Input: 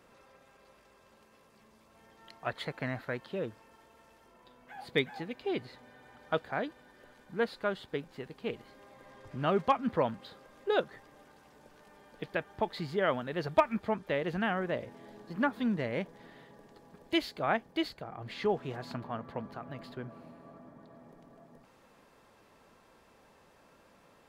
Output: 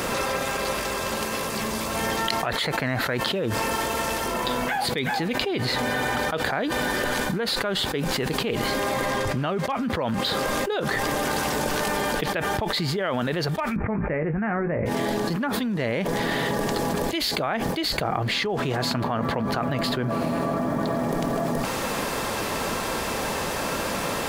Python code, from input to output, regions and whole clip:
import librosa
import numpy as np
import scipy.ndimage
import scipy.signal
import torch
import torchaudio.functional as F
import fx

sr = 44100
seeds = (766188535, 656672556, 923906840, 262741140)

y = fx.chain(x, sr, fx.steep_lowpass(hz=2400.0, slope=72),
    fx.low_shelf(hz=210.0, db=11.5),
    fx.doubler(ms=19.0, db=-9), at=(13.76, 14.86))
y = fx.high_shelf(y, sr, hz=4000.0, db=7.5)
y = fx.env_flatten(y, sr, amount_pct=100)
y = y * librosa.db_to_amplitude(-6.5)